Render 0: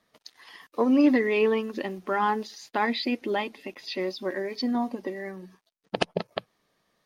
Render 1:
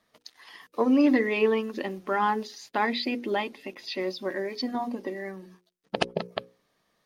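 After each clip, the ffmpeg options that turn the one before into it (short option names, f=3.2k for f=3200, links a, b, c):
-af "bandreject=f=60:t=h:w=6,bandreject=f=120:t=h:w=6,bandreject=f=180:t=h:w=6,bandreject=f=240:t=h:w=6,bandreject=f=300:t=h:w=6,bandreject=f=360:t=h:w=6,bandreject=f=420:t=h:w=6,bandreject=f=480:t=h:w=6,bandreject=f=540:t=h:w=6"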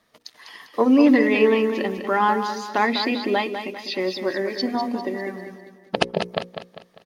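-af "aecho=1:1:199|398|597|796|995:0.376|0.154|0.0632|0.0259|0.0106,volume=5.5dB"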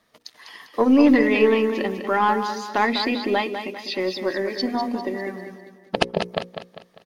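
-af "aeval=exprs='0.891*(cos(1*acos(clip(val(0)/0.891,-1,1)))-cos(1*PI/2))+0.0355*(cos(4*acos(clip(val(0)/0.891,-1,1)))-cos(4*PI/2))':c=same"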